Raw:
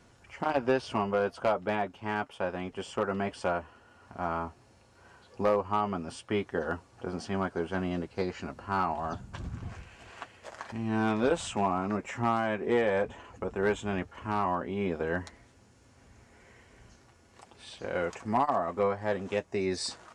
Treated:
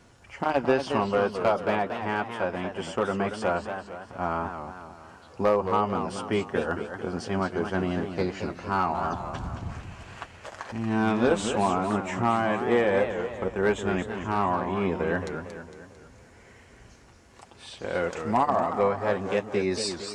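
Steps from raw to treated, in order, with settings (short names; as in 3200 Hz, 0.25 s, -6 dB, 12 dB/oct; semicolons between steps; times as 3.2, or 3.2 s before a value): warbling echo 0.226 s, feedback 50%, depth 190 cents, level -8 dB; gain +3.5 dB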